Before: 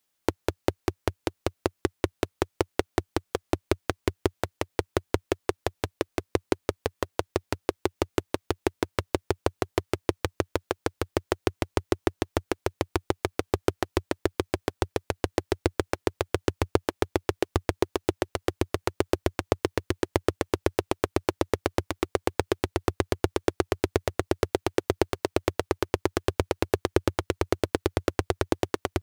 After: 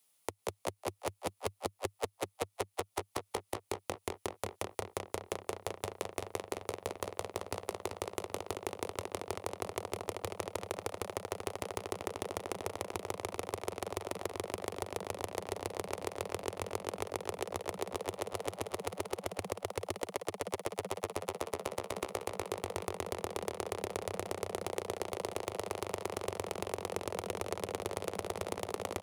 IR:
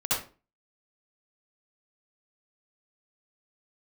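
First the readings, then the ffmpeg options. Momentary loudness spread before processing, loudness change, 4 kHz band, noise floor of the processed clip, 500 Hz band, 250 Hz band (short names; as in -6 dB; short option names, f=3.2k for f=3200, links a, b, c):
4 LU, -10.0 dB, -8.0 dB, -74 dBFS, -10.0 dB, -15.0 dB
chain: -filter_complex "[0:a]asplit=2[a][b];[b]asplit=4[c][d][e][f];[c]adelay=183,afreqshift=99,volume=-11dB[g];[d]adelay=366,afreqshift=198,volume=-19.2dB[h];[e]adelay=549,afreqshift=297,volume=-27.4dB[i];[f]adelay=732,afreqshift=396,volume=-35.5dB[j];[g][h][i][j]amix=inputs=4:normalize=0[k];[a][k]amix=inputs=2:normalize=0,acrossover=split=340|3000[l][m][n];[l]acompressor=threshold=-29dB:ratio=6[o];[o][m][n]amix=inputs=3:normalize=0,equalizer=f=100:t=o:w=0.33:g=5,equalizer=f=315:t=o:w=0.33:g=-7,equalizer=f=1.6k:t=o:w=0.33:g=-9,equalizer=f=10k:t=o:w=0.33:g=10,acompressor=threshold=-34dB:ratio=6,lowshelf=f=130:g=-8,asplit=2[p][q];[q]adelay=387,lowpass=f=3.1k:p=1,volume=-6dB,asplit=2[r][s];[s]adelay=387,lowpass=f=3.1k:p=1,volume=0.48,asplit=2[t][u];[u]adelay=387,lowpass=f=3.1k:p=1,volume=0.48,asplit=2[v][w];[w]adelay=387,lowpass=f=3.1k:p=1,volume=0.48,asplit=2[x][y];[y]adelay=387,lowpass=f=3.1k:p=1,volume=0.48,asplit=2[z][aa];[aa]adelay=387,lowpass=f=3.1k:p=1,volume=0.48[ab];[r][t][v][x][z][ab]amix=inputs=6:normalize=0[ac];[p][ac]amix=inputs=2:normalize=0,asoftclip=type=tanh:threshold=-24dB,volume=2.5dB"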